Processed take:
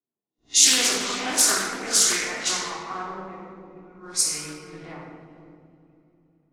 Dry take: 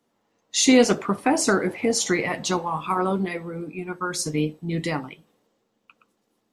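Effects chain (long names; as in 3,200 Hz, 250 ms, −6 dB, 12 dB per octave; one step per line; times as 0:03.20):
peak hold with a rise ahead of every peak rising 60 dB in 0.38 s
first difference
in parallel at −11.5 dB: bit reduction 7 bits
on the sum: low-shelf EQ 160 Hz +6 dB
on a send: feedback delay with all-pass diffusion 479 ms, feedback 43%, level −7.5 dB
on the sum: low-pass that shuts in the quiet parts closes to 310 Hz, open at −21 dBFS
rectangular room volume 1,400 cubic metres, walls mixed, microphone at 3.3 metres
highs frequency-modulated by the lows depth 0.32 ms
level +2 dB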